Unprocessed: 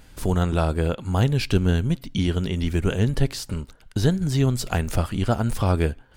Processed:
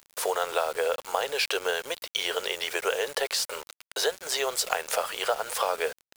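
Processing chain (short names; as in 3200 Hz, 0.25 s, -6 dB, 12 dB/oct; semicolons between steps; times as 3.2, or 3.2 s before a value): elliptic high-pass 470 Hz, stop band 50 dB; compressor 6:1, threshold -31 dBFS, peak gain reduction 11.5 dB; requantised 8-bit, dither none; gain +8 dB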